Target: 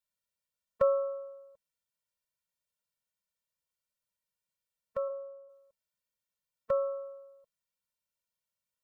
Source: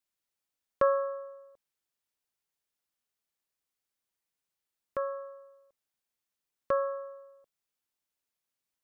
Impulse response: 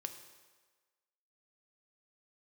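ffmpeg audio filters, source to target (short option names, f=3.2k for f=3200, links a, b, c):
-filter_complex "[0:a]asplit=3[a][b][c];[a]afade=t=out:st=5.08:d=0.02[d];[b]lowpass=f=1.1k:w=0.5412,lowpass=f=1.1k:w=1.3066,afade=t=in:st=5.08:d=0.02,afade=t=out:st=5.48:d=0.02[e];[c]afade=t=in:st=5.48:d=0.02[f];[d][e][f]amix=inputs=3:normalize=0,afftfilt=real='re*eq(mod(floor(b*sr/1024/220),2),0)':imag='im*eq(mod(floor(b*sr/1024/220),2),0)':win_size=1024:overlap=0.75"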